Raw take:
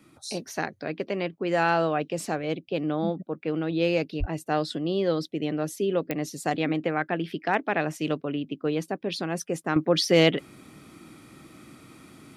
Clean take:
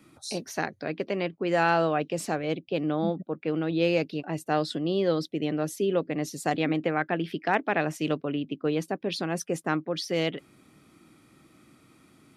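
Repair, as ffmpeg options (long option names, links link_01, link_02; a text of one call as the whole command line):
ffmpeg -i in.wav -filter_complex "[0:a]adeclick=threshold=4,asplit=3[link_01][link_02][link_03];[link_01]afade=type=out:start_time=4.19:duration=0.02[link_04];[link_02]highpass=frequency=140:width=0.5412,highpass=frequency=140:width=1.3066,afade=type=in:start_time=4.19:duration=0.02,afade=type=out:start_time=4.31:duration=0.02[link_05];[link_03]afade=type=in:start_time=4.31:duration=0.02[link_06];[link_04][link_05][link_06]amix=inputs=3:normalize=0,asetnsamples=nb_out_samples=441:pad=0,asendcmd='9.76 volume volume -8.5dB',volume=0dB" out.wav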